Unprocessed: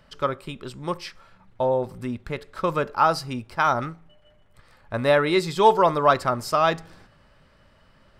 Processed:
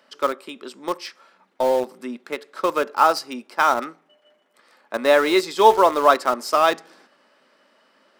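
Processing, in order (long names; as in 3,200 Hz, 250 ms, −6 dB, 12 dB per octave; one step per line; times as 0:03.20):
Butterworth high-pass 240 Hz 36 dB per octave
parametric band 5,700 Hz +2.5 dB 0.66 octaves
in parallel at −12 dB: bit reduction 4 bits
on the sum: level +1 dB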